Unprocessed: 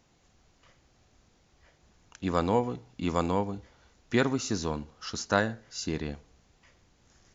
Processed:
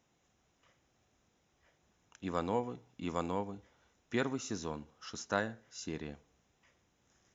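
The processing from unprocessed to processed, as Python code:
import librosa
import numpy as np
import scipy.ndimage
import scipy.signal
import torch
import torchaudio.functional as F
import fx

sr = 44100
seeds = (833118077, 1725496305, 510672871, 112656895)

y = fx.highpass(x, sr, hz=120.0, slope=6)
y = fx.notch(y, sr, hz=4500.0, q=5.0)
y = y * librosa.db_to_amplitude(-7.5)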